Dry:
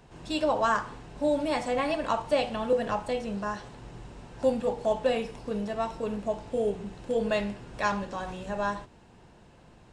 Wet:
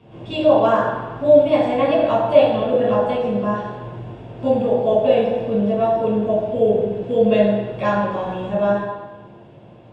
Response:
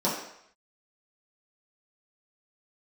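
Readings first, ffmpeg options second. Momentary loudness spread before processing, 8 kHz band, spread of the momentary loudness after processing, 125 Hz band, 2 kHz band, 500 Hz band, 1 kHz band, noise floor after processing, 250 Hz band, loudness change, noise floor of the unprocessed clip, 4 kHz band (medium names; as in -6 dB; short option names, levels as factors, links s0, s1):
10 LU, no reading, 12 LU, +13.0 dB, +4.5 dB, +13.0 dB, +8.0 dB, -44 dBFS, +11.5 dB, +11.5 dB, -55 dBFS, +5.0 dB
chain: -filter_complex "[0:a]bass=f=250:g=-5,treble=f=4000:g=-12[s0];[1:a]atrim=start_sample=2205,asetrate=26901,aresample=44100[s1];[s0][s1]afir=irnorm=-1:irlink=0,volume=0.501"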